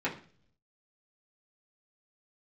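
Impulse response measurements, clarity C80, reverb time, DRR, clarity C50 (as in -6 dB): 16.0 dB, 0.45 s, -7.5 dB, 11.5 dB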